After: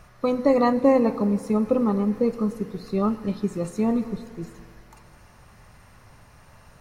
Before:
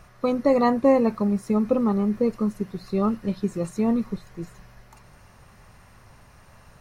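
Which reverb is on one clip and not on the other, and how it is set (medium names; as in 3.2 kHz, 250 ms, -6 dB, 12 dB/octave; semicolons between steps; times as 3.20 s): FDN reverb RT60 2 s, low-frequency decay 0.85×, high-frequency decay 0.85×, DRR 12 dB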